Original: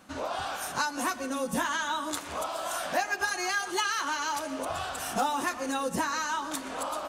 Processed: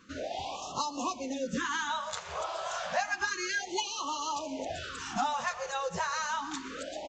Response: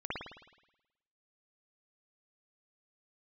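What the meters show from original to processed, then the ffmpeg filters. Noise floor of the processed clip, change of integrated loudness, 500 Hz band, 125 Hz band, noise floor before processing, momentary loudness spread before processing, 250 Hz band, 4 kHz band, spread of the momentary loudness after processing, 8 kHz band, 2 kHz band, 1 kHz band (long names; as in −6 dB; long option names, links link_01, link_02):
−44 dBFS, −3.0 dB, −2.5 dB, −2.5 dB, −40 dBFS, 5 LU, −4.0 dB, −2.0 dB, 6 LU, −3.5 dB, −3.5 dB, −3.0 dB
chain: -af "aresample=16000,aresample=44100,afftfilt=real='re*(1-between(b*sr/1024,240*pow(1900/240,0.5+0.5*sin(2*PI*0.3*pts/sr))/1.41,240*pow(1900/240,0.5+0.5*sin(2*PI*0.3*pts/sr))*1.41))':imag='im*(1-between(b*sr/1024,240*pow(1900/240,0.5+0.5*sin(2*PI*0.3*pts/sr))/1.41,240*pow(1900/240,0.5+0.5*sin(2*PI*0.3*pts/sr))*1.41))':win_size=1024:overlap=0.75,volume=-2dB"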